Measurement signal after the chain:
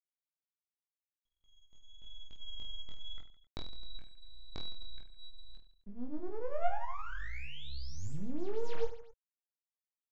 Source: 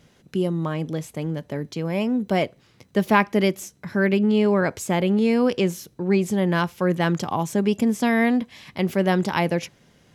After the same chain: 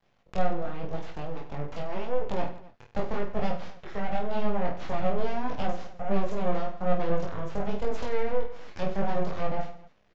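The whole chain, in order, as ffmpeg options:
-filter_complex "[0:a]highpass=f=200:p=1,equalizer=f=350:t=o:w=0.2:g=10,acrossover=split=390[s0][s1];[s1]acompressor=threshold=0.0141:ratio=20[s2];[s0][s2]amix=inputs=2:normalize=0,flanger=delay=22.5:depth=5.7:speed=0.86,aeval=exprs='sgn(val(0))*max(abs(val(0))-0.00126,0)':c=same,crystalizer=i=3:c=0,aeval=exprs='abs(val(0))':c=same,adynamicsmooth=sensitivity=5.5:basefreq=2900,aecho=1:1:20|50|95|162.5|263.8:0.631|0.398|0.251|0.158|0.1,aresample=16000,aresample=44100"

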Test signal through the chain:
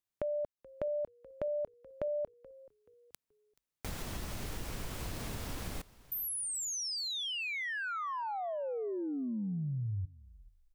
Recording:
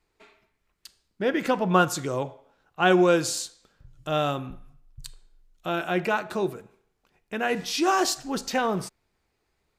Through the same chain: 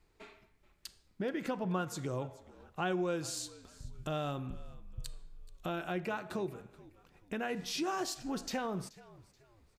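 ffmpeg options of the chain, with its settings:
-filter_complex "[0:a]lowshelf=f=260:g=7,acompressor=threshold=0.01:ratio=2.5,asplit=2[s0][s1];[s1]asplit=3[s2][s3][s4];[s2]adelay=429,afreqshift=-56,volume=0.0944[s5];[s3]adelay=858,afreqshift=-112,volume=0.0313[s6];[s4]adelay=1287,afreqshift=-168,volume=0.0102[s7];[s5][s6][s7]amix=inputs=3:normalize=0[s8];[s0][s8]amix=inputs=2:normalize=0"

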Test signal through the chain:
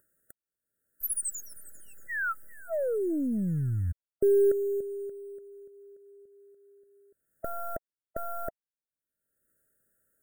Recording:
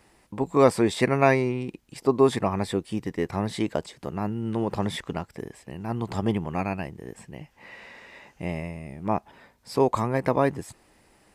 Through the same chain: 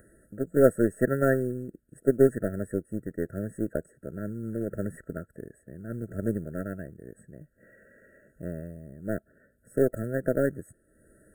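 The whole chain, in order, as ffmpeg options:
-af "acompressor=mode=upward:threshold=0.01:ratio=2.5,acrusher=bits=6:mode=log:mix=0:aa=0.000001,aeval=exprs='0.562*(cos(1*acos(clip(val(0)/0.562,-1,1)))-cos(1*PI/2))+0.158*(cos(2*acos(clip(val(0)/0.562,-1,1)))-cos(2*PI/2))+0.1*(cos(4*acos(clip(val(0)/0.562,-1,1)))-cos(4*PI/2))+0.0501*(cos(6*acos(clip(val(0)/0.562,-1,1)))-cos(6*PI/2))+0.0398*(cos(7*acos(clip(val(0)/0.562,-1,1)))-cos(7*PI/2))':c=same,asuperstop=centerf=3800:order=8:qfactor=0.62,afftfilt=real='re*eq(mod(floor(b*sr/1024/650),2),0)':imag='im*eq(mod(floor(b*sr/1024/650),2),0)':win_size=1024:overlap=0.75"

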